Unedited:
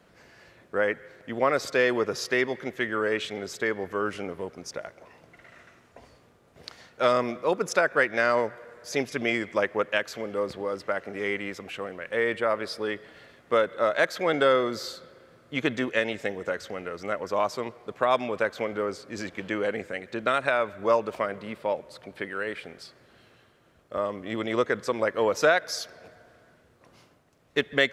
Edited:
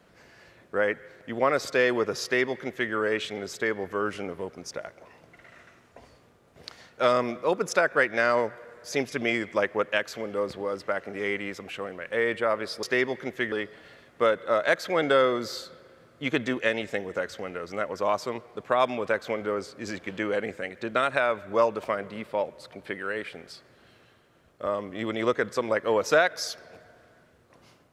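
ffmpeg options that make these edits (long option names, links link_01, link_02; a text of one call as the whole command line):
ffmpeg -i in.wav -filter_complex "[0:a]asplit=3[link_01][link_02][link_03];[link_01]atrim=end=12.832[link_04];[link_02]atrim=start=2.228:end=2.922[link_05];[link_03]atrim=start=12.828[link_06];[link_04][link_05]acrossfade=duration=0.004:curve1=hsin:curve2=hsin[link_07];[link_07][link_06]acrossfade=duration=0.004:curve1=hsin:curve2=hsin" out.wav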